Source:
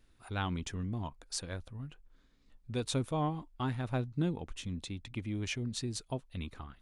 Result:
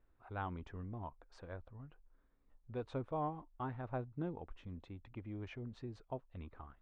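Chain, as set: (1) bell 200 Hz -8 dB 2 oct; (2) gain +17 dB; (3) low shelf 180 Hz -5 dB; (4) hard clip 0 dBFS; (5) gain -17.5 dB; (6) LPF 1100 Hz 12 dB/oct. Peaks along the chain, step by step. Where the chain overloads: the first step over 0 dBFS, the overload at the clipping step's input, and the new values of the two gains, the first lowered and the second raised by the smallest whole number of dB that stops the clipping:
-20.0, -3.0, -3.0, -3.0, -20.5, -27.5 dBFS; no overload

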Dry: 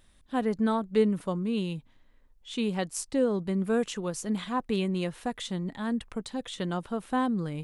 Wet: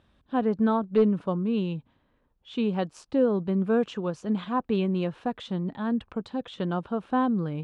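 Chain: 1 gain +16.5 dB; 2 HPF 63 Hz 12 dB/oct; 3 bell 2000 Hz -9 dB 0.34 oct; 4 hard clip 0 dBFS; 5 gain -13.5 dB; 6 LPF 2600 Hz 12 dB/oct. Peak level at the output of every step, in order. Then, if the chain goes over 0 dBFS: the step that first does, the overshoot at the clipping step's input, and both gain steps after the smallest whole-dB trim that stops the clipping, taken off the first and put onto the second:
+4.0, +3.5, +3.5, 0.0, -13.5, -13.5 dBFS; step 1, 3.5 dB; step 1 +12.5 dB, step 5 -9.5 dB

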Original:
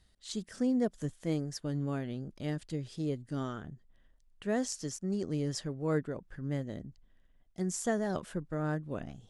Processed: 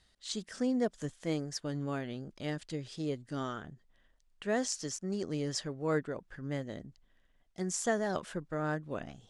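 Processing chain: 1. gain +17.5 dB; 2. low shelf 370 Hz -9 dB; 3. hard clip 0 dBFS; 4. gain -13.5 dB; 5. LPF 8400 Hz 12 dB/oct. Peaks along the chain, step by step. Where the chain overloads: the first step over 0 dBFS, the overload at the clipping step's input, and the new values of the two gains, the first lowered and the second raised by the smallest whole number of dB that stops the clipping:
-0.5, -1.5, -1.5, -15.0, -17.0 dBFS; no overload

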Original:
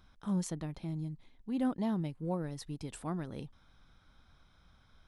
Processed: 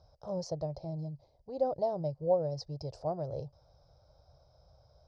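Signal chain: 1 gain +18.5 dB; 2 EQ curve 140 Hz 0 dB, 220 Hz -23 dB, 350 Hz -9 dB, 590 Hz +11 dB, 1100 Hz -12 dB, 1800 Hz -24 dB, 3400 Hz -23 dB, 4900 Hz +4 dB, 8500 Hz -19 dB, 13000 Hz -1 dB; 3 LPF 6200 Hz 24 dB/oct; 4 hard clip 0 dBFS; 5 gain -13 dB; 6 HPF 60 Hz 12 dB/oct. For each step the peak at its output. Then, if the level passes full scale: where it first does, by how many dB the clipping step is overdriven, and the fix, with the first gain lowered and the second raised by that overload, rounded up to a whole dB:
-3.5, -3.0, -3.0, -3.0, -16.0, -16.0 dBFS; no overload

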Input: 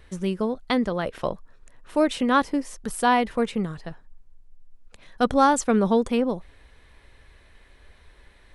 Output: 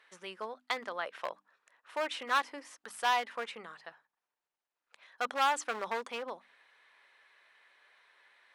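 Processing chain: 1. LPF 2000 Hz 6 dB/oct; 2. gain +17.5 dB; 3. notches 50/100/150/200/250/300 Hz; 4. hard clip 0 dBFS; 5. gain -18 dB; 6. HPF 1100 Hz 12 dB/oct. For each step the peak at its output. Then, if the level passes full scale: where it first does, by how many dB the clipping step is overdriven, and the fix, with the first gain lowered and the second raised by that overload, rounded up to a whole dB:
-8.5, +9.0, +9.5, 0.0, -18.0, -16.0 dBFS; step 2, 9.5 dB; step 2 +7.5 dB, step 5 -8 dB

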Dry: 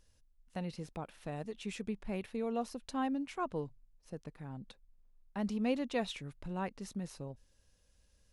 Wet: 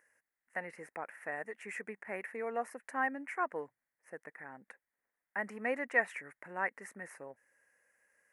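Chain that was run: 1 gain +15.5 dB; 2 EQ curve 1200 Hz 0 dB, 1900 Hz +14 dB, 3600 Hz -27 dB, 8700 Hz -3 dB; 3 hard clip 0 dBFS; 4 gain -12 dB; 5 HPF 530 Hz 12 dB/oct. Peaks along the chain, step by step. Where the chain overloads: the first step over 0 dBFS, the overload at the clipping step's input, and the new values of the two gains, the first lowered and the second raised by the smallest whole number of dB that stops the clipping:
-6.0, -2.5, -2.5, -14.5, -16.0 dBFS; no overload

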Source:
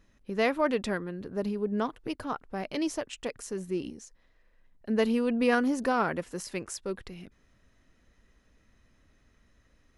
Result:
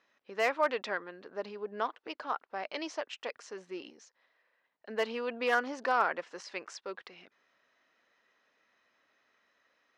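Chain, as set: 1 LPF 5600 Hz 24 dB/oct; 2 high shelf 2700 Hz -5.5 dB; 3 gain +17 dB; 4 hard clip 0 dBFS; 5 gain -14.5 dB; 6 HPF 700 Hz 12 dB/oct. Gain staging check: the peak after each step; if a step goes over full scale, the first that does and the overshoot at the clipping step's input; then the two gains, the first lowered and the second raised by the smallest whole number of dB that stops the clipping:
-11.5, -12.5, +4.5, 0.0, -14.5, -14.5 dBFS; step 3, 4.5 dB; step 3 +12 dB, step 5 -9.5 dB

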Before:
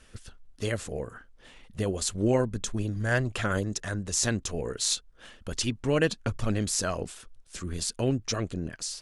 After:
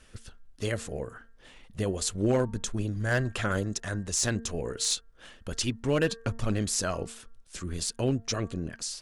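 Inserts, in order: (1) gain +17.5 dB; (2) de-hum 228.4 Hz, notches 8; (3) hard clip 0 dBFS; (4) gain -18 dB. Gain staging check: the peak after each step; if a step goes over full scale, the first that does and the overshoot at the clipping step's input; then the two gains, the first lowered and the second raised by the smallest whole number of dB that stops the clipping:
+8.5, +8.5, 0.0, -18.0 dBFS; step 1, 8.5 dB; step 1 +8.5 dB, step 4 -9 dB

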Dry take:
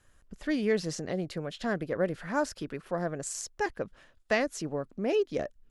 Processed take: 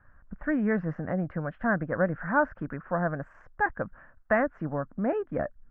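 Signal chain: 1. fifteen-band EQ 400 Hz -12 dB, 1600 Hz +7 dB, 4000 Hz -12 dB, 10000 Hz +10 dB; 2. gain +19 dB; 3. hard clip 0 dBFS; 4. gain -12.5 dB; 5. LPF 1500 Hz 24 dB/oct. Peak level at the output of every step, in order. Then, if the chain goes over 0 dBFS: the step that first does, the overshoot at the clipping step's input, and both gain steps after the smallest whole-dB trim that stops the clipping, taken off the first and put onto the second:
-14.0, +5.0, 0.0, -12.5, -12.0 dBFS; step 2, 5.0 dB; step 2 +14 dB, step 4 -7.5 dB

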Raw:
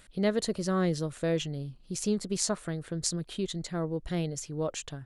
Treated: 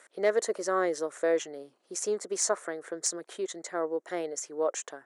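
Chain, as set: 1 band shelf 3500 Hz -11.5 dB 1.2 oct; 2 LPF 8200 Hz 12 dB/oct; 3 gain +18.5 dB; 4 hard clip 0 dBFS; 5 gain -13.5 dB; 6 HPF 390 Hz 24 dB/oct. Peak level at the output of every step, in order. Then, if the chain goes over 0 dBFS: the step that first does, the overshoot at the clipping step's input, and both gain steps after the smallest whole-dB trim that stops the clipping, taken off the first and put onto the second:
-12.0, -14.0, +4.5, 0.0, -13.5, -13.0 dBFS; step 3, 4.5 dB; step 3 +13.5 dB, step 5 -8.5 dB

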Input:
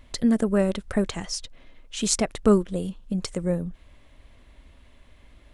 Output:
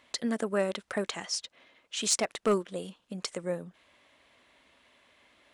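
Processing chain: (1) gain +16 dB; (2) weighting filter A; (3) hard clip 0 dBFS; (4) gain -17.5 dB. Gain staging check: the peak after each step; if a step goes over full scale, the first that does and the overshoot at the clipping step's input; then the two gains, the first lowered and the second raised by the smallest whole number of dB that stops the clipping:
+10.0, +9.0, 0.0, -17.5 dBFS; step 1, 9.0 dB; step 1 +7 dB, step 4 -8.5 dB

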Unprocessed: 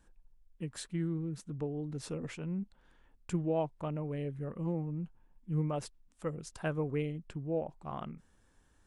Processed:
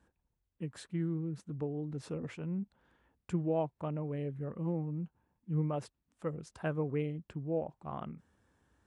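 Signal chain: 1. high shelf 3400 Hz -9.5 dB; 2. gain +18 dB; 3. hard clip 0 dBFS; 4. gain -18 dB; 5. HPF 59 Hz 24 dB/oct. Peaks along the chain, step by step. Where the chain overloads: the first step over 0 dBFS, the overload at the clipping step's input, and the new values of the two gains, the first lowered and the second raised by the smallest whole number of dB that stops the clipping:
-22.0, -4.0, -4.0, -22.0, -21.0 dBFS; no overload

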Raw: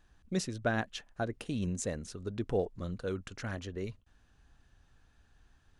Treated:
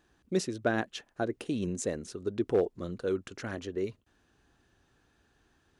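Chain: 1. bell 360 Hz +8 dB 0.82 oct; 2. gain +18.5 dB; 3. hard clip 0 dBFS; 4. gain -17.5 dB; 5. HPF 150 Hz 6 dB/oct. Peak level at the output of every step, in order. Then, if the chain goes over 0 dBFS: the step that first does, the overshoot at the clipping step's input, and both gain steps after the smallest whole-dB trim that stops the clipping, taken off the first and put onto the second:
-14.5, +4.0, 0.0, -17.5, -15.0 dBFS; step 2, 4.0 dB; step 2 +14.5 dB, step 4 -13.5 dB

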